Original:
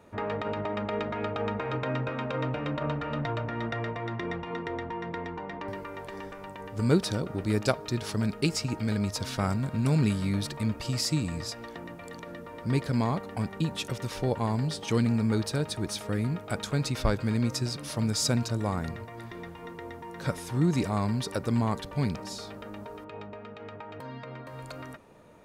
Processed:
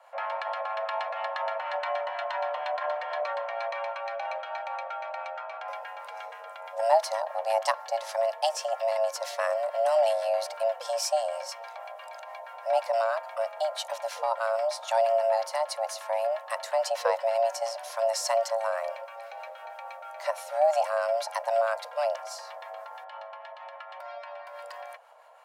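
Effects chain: peaking EQ 230 Hz +4.5 dB 1.7 oct; frequency shift +450 Hz; harmonic tremolo 6.2 Hz, depth 50%, crossover 890 Hz

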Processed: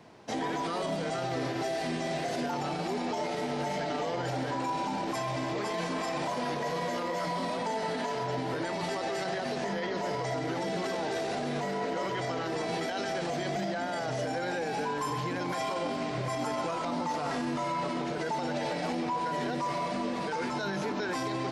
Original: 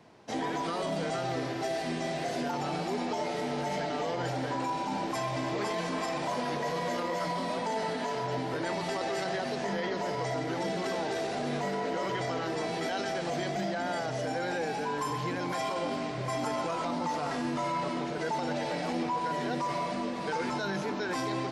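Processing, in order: peak limiter -27 dBFS, peak gain reduction 7 dB; trim +3 dB

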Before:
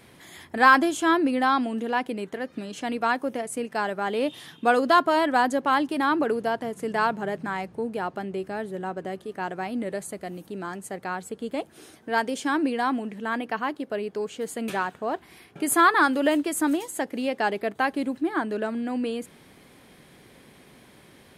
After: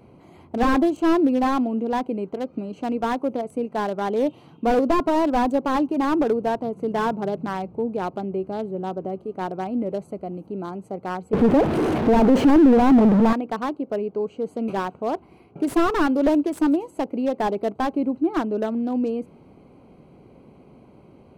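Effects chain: local Wiener filter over 25 samples; 11.33–13.33 s: power-law waveshaper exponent 0.35; slew-rate limiter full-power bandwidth 59 Hz; trim +5 dB

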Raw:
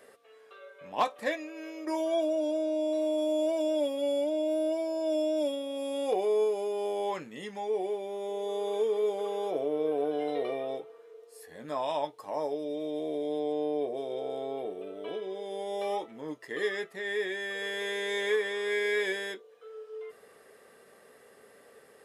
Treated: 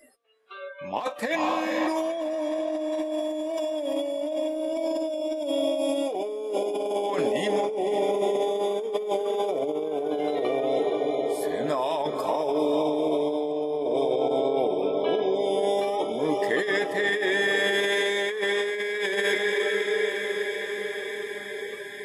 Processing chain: echo that smears into a reverb 486 ms, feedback 75%, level -9 dB; spectral noise reduction 24 dB; compressor with a negative ratio -34 dBFS, ratio -1; trim +8 dB

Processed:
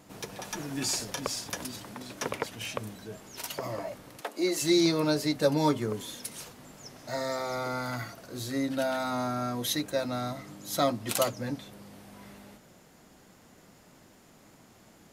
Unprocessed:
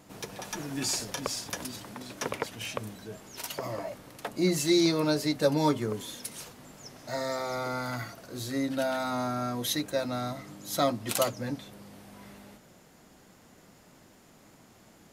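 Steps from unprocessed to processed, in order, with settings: 4.21–4.62 s: high-pass 290 Hz 24 dB/octave

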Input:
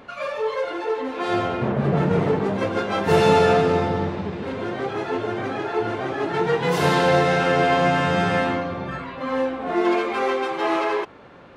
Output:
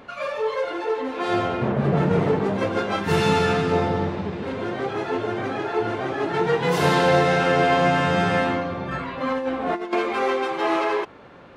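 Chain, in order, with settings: 2.96–3.72 s: peaking EQ 590 Hz -10 dB 0.93 oct; 8.91–9.93 s: compressor with a negative ratio -24 dBFS, ratio -0.5

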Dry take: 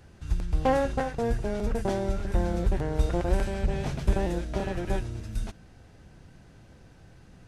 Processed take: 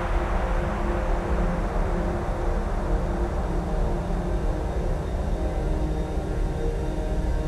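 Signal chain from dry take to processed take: painted sound fall, 2.12–2.58 s, 550–5300 Hz -29 dBFS; Paulstretch 27×, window 1.00 s, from 2.60 s

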